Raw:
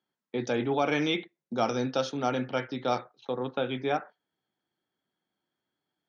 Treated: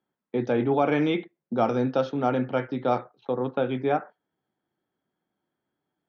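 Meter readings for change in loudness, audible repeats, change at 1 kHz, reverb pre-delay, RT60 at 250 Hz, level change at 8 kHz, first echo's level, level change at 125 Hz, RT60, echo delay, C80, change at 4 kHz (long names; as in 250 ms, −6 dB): +4.0 dB, no echo audible, +3.5 dB, no reverb audible, no reverb audible, can't be measured, no echo audible, +5.5 dB, no reverb audible, no echo audible, no reverb audible, −5.5 dB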